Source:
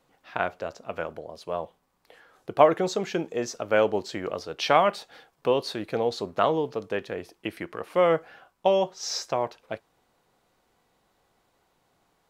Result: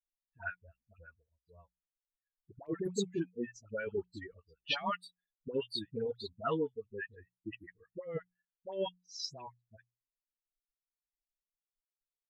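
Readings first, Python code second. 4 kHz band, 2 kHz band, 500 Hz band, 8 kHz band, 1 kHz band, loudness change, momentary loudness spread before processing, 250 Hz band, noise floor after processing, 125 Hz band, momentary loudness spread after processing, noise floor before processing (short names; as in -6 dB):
-7.5 dB, -10.5 dB, -15.0 dB, -12.0 dB, -17.5 dB, -12.5 dB, 16 LU, -9.0 dB, under -85 dBFS, -8.5 dB, 16 LU, -70 dBFS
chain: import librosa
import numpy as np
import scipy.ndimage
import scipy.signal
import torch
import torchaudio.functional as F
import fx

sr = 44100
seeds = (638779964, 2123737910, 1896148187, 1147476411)

y = fx.bin_expand(x, sr, power=3.0)
y = fx.hum_notches(y, sr, base_hz=60, count=3)
y = fx.env_lowpass(y, sr, base_hz=1600.0, full_db=-24.0)
y = fx.over_compress(y, sr, threshold_db=-31.0, ratio=-0.5)
y = fx.dispersion(y, sr, late='highs', ms=82.0, hz=870.0)
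y = y * librosa.db_to_amplitude(-3.0)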